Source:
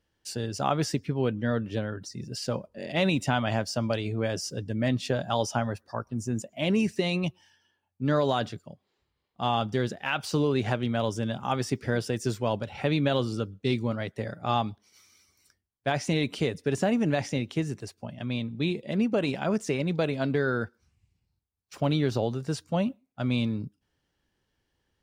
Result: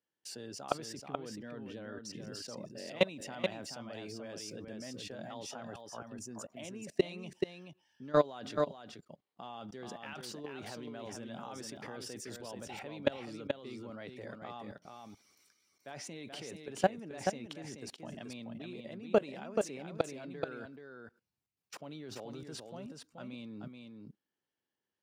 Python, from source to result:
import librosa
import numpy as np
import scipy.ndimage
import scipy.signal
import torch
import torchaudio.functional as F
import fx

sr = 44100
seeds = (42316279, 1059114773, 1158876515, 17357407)

p1 = scipy.signal.sosfilt(scipy.signal.butter(2, 210.0, 'highpass', fs=sr, output='sos'), x)
p2 = fx.high_shelf(p1, sr, hz=2900.0, db=-2.5)
p3 = fx.level_steps(p2, sr, step_db=24)
p4 = p3 + fx.echo_single(p3, sr, ms=430, db=-5.0, dry=0)
y = F.gain(torch.from_numpy(p4), 2.5).numpy()